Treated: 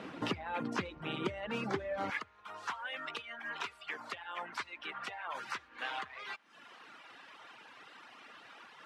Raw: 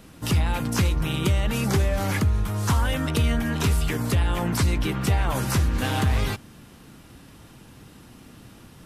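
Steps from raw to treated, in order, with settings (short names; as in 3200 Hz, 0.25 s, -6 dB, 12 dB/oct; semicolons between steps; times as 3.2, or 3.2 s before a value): compressor 5:1, threshold -35 dBFS, peak gain reduction 16 dB; LPF 2600 Hz 12 dB/oct; reverb RT60 0.60 s, pre-delay 61 ms, DRR 21 dB; reverb removal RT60 1.3 s; HPF 290 Hz 12 dB/oct, from 2.1 s 1000 Hz; gain +7.5 dB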